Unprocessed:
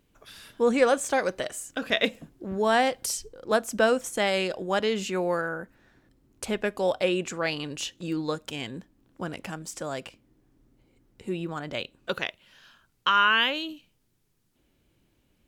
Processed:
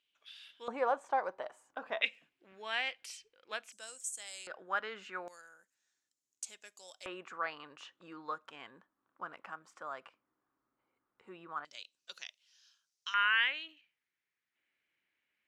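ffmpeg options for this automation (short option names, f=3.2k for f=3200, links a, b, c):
-af "asetnsamples=n=441:p=0,asendcmd='0.68 bandpass f 920;2.02 bandpass f 2500;3.72 bandpass f 7900;4.47 bandpass f 1400;5.28 bandpass f 6900;7.06 bandpass f 1200;11.65 bandpass f 5700;13.14 bandpass f 2000',bandpass=f=3.1k:t=q:w=3.3:csg=0"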